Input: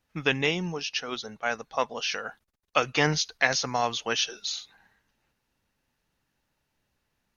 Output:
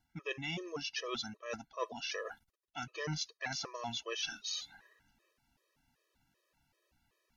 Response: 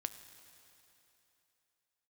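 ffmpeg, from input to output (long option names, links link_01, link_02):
-af "areverse,acompressor=threshold=-35dB:ratio=20,areverse,afftfilt=real='re*gt(sin(2*PI*2.6*pts/sr)*(1-2*mod(floor(b*sr/1024/330),2)),0)':imag='im*gt(sin(2*PI*2.6*pts/sr)*(1-2*mod(floor(b*sr/1024/330),2)),0)':win_size=1024:overlap=0.75,volume=3dB"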